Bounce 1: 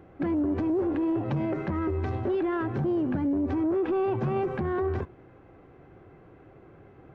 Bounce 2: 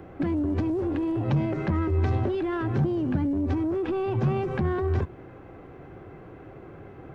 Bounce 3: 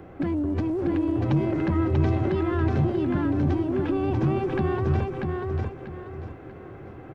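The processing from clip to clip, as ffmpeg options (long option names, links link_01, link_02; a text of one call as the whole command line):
ffmpeg -i in.wav -filter_complex "[0:a]acrossover=split=170|3000[link_01][link_02][link_03];[link_02]acompressor=threshold=-35dB:ratio=6[link_04];[link_01][link_04][link_03]amix=inputs=3:normalize=0,volume=7.5dB" out.wav
ffmpeg -i in.wav -af "aecho=1:1:640|1280|1920|2560:0.708|0.227|0.0725|0.0232" out.wav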